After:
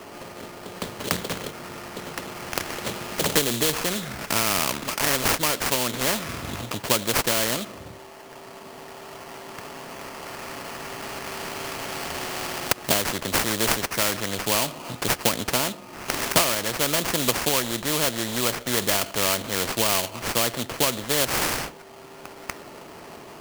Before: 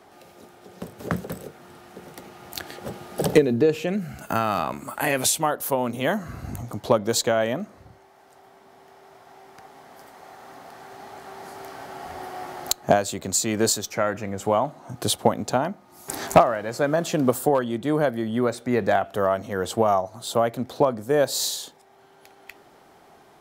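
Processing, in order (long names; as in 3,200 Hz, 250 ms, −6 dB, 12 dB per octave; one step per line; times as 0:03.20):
notch comb filter 780 Hz
sample-rate reduction 3,700 Hz, jitter 20%
every bin compressed towards the loudest bin 2 to 1
level +2.5 dB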